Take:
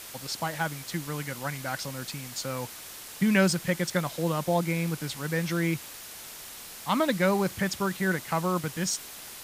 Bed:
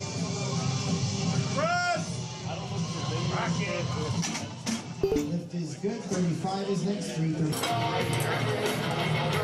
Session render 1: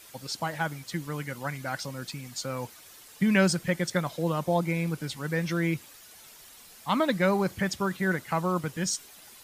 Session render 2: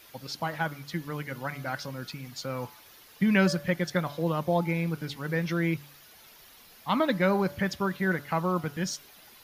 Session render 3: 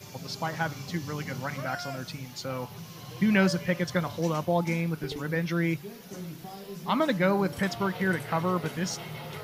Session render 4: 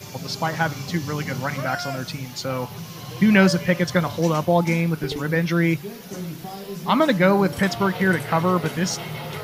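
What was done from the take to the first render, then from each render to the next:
denoiser 10 dB, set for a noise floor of -43 dBFS
bell 8100 Hz -13.5 dB 0.59 oct; de-hum 143.9 Hz, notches 12
add bed -12 dB
gain +7.5 dB

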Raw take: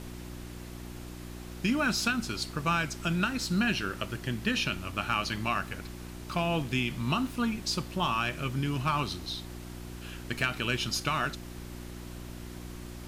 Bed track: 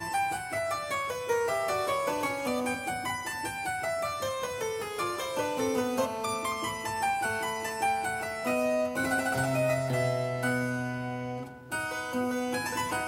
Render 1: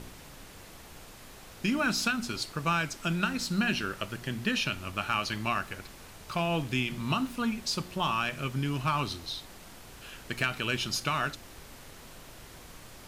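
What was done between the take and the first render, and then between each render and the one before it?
de-hum 60 Hz, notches 6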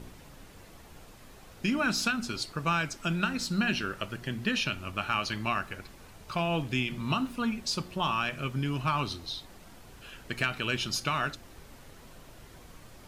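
denoiser 6 dB, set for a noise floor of -50 dBFS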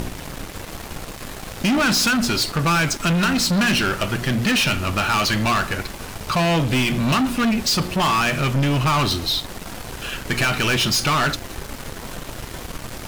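sample leveller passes 5; upward compressor, threshold -26 dBFS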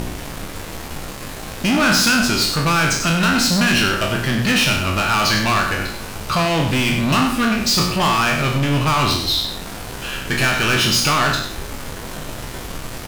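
spectral trails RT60 0.59 s; echo 97 ms -9 dB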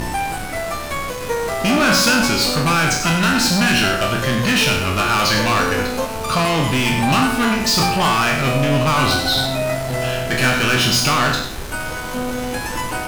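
add bed track +6 dB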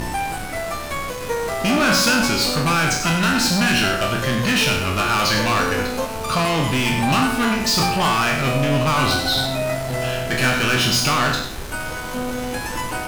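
gain -2 dB

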